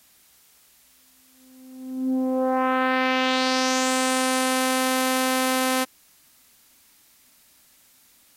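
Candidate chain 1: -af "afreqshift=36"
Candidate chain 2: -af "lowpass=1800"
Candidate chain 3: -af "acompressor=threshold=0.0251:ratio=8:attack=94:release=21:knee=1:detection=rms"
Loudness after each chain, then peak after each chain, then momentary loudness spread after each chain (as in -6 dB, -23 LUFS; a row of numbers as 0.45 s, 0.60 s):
-22.0 LUFS, -24.0 LUFS, -27.0 LUFS; -9.0 dBFS, -10.5 dBFS, -11.0 dBFS; 6 LU, 6 LU, 6 LU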